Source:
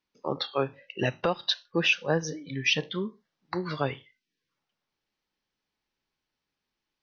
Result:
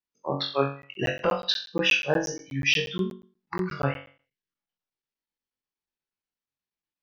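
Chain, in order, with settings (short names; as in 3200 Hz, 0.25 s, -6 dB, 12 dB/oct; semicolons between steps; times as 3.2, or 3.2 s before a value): spectral noise reduction 15 dB; flutter echo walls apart 3.7 m, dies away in 0.41 s; crackling interface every 0.12 s, samples 512, zero, from 0.82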